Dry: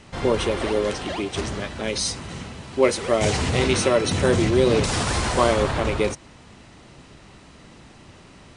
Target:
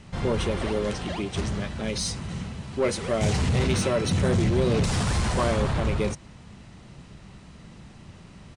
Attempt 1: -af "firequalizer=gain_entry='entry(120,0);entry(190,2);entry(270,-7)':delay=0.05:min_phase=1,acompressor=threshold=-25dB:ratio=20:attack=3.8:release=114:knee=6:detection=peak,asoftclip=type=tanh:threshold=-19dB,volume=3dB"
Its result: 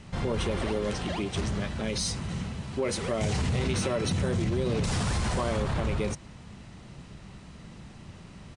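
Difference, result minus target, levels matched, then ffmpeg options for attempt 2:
downward compressor: peak gain reduction +10.5 dB
-af "firequalizer=gain_entry='entry(120,0);entry(190,2);entry(270,-7)':delay=0.05:min_phase=1,asoftclip=type=tanh:threshold=-19dB,volume=3dB"

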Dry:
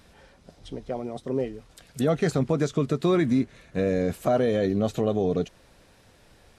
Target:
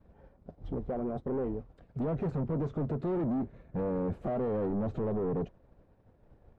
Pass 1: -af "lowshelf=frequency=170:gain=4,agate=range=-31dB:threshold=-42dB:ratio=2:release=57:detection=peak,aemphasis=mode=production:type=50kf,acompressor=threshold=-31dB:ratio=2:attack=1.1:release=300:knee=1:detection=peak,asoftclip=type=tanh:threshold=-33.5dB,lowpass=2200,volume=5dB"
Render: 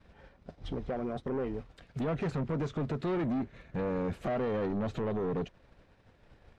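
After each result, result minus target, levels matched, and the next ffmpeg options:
2,000 Hz band +9.5 dB; downward compressor: peak gain reduction +4 dB
-af "lowshelf=frequency=170:gain=4,agate=range=-31dB:threshold=-42dB:ratio=2:release=57:detection=peak,aemphasis=mode=production:type=50kf,acompressor=threshold=-31dB:ratio=2:attack=1.1:release=300:knee=1:detection=peak,asoftclip=type=tanh:threshold=-33.5dB,lowpass=810,volume=5dB"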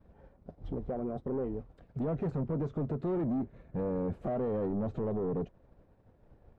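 downward compressor: peak gain reduction +4 dB
-af "lowshelf=frequency=170:gain=4,agate=range=-31dB:threshold=-42dB:ratio=2:release=57:detection=peak,aemphasis=mode=production:type=50kf,acompressor=threshold=-23dB:ratio=2:attack=1.1:release=300:knee=1:detection=peak,asoftclip=type=tanh:threshold=-33.5dB,lowpass=810,volume=5dB"

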